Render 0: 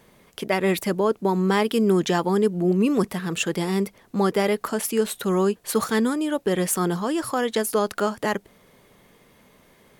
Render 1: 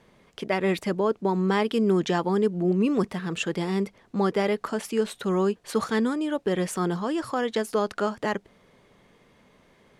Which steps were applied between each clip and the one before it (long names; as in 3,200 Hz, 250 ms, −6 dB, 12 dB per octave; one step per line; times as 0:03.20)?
high-frequency loss of the air 64 metres
level −2.5 dB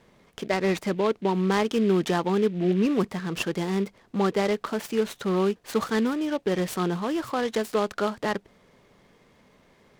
short delay modulated by noise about 2,300 Hz, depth 0.03 ms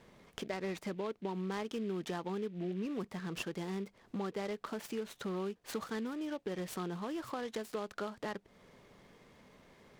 downward compressor 3 to 1, threshold −38 dBFS, peak gain reduction 14.5 dB
level −2 dB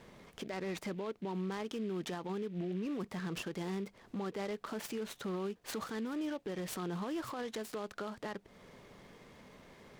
brickwall limiter −35.5 dBFS, peak gain reduction 11.5 dB
level +4 dB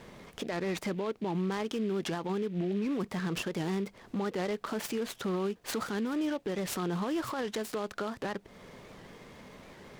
wow of a warped record 78 rpm, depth 160 cents
level +6 dB